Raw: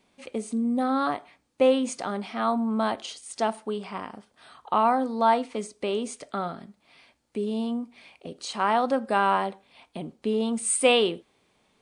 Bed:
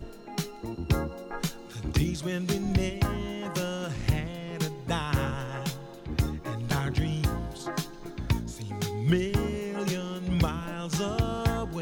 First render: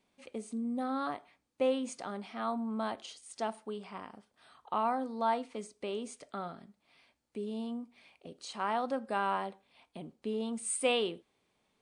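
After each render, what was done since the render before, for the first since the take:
level −9.5 dB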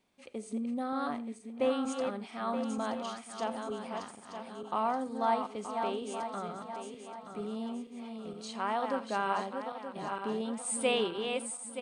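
feedback delay that plays each chunk backwards 463 ms, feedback 62%, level −5.5 dB
single-tap delay 84 ms −19.5 dB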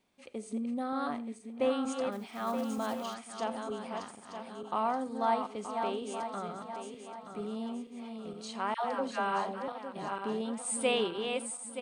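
0:02.12–0:03.16: one scale factor per block 5 bits
0:08.74–0:09.68: all-pass dispersion lows, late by 108 ms, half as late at 720 Hz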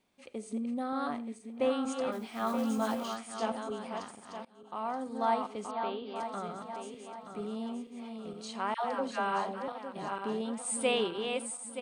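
0:02.06–0:03.52: double-tracking delay 18 ms −3 dB
0:04.45–0:05.20: fade in, from −23.5 dB
0:05.71–0:06.16: Chebyshev low-pass with heavy ripple 4,800 Hz, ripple 3 dB

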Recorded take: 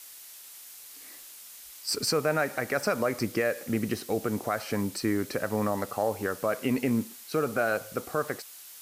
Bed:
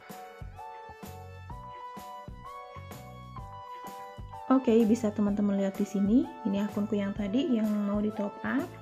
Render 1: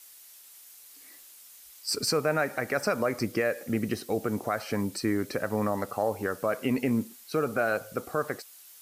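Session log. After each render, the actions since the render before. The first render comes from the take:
broadband denoise 6 dB, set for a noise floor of −48 dBFS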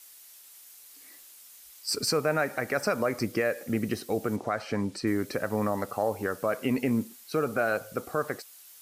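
0:04.36–0:05.07: high-frequency loss of the air 58 metres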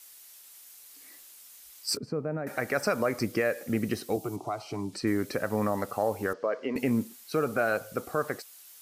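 0:01.97–0:02.47: resonant band-pass 180 Hz, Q 0.72
0:04.16–0:04.93: phaser with its sweep stopped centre 340 Hz, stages 8
0:06.33–0:06.76: loudspeaker in its box 350–4,700 Hz, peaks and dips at 460 Hz +4 dB, 770 Hz −5 dB, 1,400 Hz −6 dB, 2,500 Hz −8 dB, 3,700 Hz −8 dB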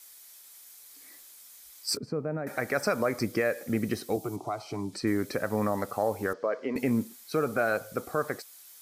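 notch filter 2,800 Hz, Q 11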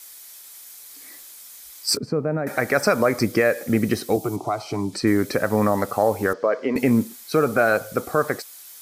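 level +8.5 dB

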